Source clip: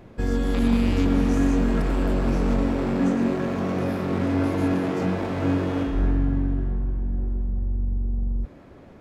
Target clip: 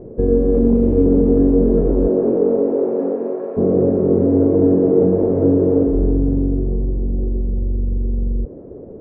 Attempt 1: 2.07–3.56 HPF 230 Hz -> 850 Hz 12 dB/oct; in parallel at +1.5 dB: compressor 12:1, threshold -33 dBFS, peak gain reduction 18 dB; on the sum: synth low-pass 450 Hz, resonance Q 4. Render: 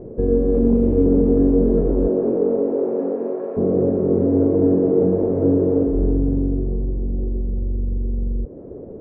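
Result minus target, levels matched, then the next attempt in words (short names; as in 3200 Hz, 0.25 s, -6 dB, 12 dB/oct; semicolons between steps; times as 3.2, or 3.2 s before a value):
compressor: peak gain reduction +8.5 dB
2.07–3.56 HPF 230 Hz -> 850 Hz 12 dB/oct; in parallel at +1.5 dB: compressor 12:1, threshold -23.5 dBFS, peak gain reduction 9.5 dB; on the sum: synth low-pass 450 Hz, resonance Q 4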